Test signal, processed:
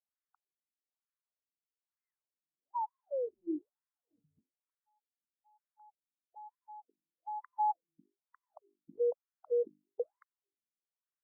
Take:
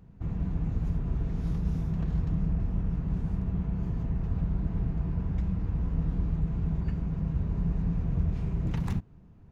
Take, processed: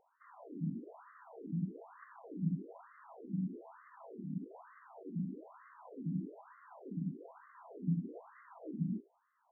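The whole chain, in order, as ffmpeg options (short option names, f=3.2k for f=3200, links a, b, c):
-af "bandreject=f=50:t=h:w=6,bandreject=f=100:t=h:w=6,bandreject=f=150:t=h:w=6,bandreject=f=200:t=h:w=6,bandreject=f=250:t=h:w=6,bandreject=f=300:t=h:w=6,bandreject=f=350:t=h:w=6,bandreject=f=400:t=h:w=6,afftfilt=real='re*between(b*sr/1024,220*pow(1500/220,0.5+0.5*sin(2*PI*1.1*pts/sr))/1.41,220*pow(1500/220,0.5+0.5*sin(2*PI*1.1*pts/sr))*1.41)':imag='im*between(b*sr/1024,220*pow(1500/220,0.5+0.5*sin(2*PI*1.1*pts/sr))/1.41,220*pow(1500/220,0.5+0.5*sin(2*PI*1.1*pts/sr))*1.41)':win_size=1024:overlap=0.75,volume=1dB"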